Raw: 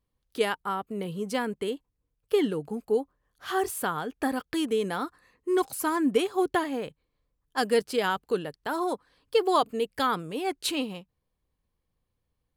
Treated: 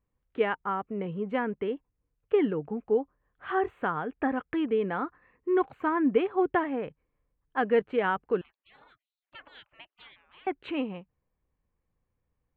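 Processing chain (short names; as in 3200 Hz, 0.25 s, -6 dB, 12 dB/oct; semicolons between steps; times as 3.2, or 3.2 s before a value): inverse Chebyshev low-pass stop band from 4800 Hz, stop band 40 dB; 8.41–10.47 spectral gate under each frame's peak -30 dB weak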